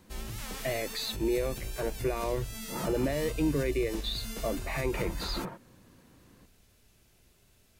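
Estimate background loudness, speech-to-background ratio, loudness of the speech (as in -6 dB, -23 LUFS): -39.5 LUFS, 6.5 dB, -33.0 LUFS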